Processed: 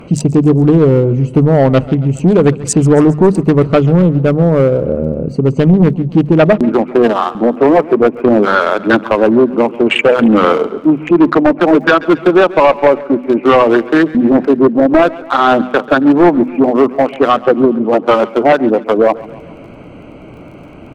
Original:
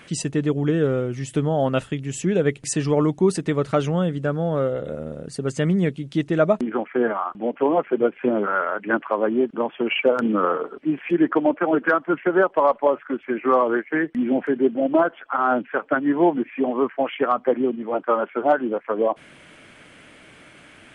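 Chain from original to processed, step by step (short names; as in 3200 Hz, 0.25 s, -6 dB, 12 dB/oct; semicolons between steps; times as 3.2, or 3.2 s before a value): Wiener smoothing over 25 samples; low shelf 190 Hz +4.5 dB; notches 50/100/150/200/250 Hz; in parallel at +0.5 dB: compressor, threshold -29 dBFS, peak gain reduction 16 dB; on the sum: crackle 21/s -48 dBFS; sine folder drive 5 dB, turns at -4.5 dBFS; on a send: feedback echo 0.137 s, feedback 56%, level -19 dB; on the sum: Doppler distortion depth 0.24 ms; gain +2 dB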